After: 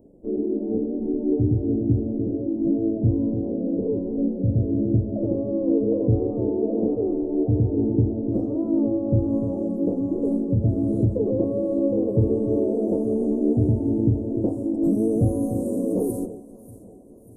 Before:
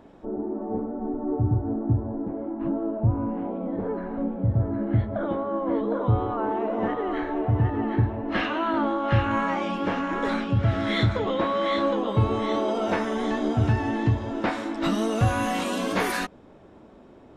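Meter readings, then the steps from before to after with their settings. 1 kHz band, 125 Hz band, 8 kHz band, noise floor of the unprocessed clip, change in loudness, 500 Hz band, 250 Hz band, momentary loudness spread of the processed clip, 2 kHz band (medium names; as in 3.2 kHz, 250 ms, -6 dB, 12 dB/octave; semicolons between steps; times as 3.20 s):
-17.0 dB, +1.5 dB, no reading, -50 dBFS, +2.5 dB, +3.0 dB, +5.5 dB, 4 LU, under -40 dB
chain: elliptic band-stop 510–9300 Hz, stop band 80 dB; echo whose repeats swap between lows and highs 294 ms, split 900 Hz, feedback 69%, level -12 dB; dynamic bell 320 Hz, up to +7 dB, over -40 dBFS, Q 0.9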